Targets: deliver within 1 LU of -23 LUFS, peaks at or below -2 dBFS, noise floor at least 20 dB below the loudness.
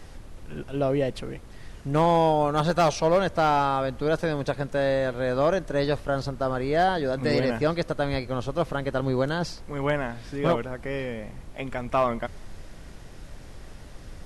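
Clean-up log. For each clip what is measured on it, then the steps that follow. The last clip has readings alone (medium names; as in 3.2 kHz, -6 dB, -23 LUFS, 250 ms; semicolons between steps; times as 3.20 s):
clipped samples 0.4%; clipping level -14.0 dBFS; noise floor -44 dBFS; noise floor target -46 dBFS; loudness -25.5 LUFS; peak level -14.0 dBFS; loudness target -23.0 LUFS
-> clip repair -14 dBFS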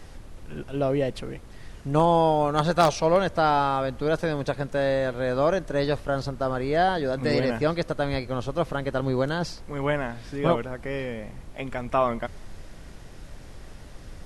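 clipped samples 0.0%; noise floor -44 dBFS; noise floor target -46 dBFS
-> noise print and reduce 6 dB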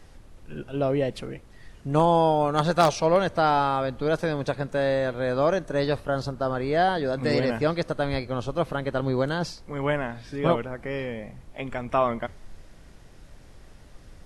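noise floor -49 dBFS; loudness -25.5 LUFS; peak level -5.0 dBFS; loudness target -23.0 LUFS
-> trim +2.5 dB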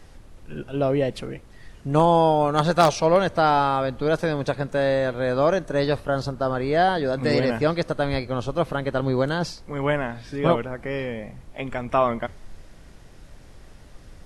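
loudness -23.0 LUFS; peak level -2.5 dBFS; noise floor -47 dBFS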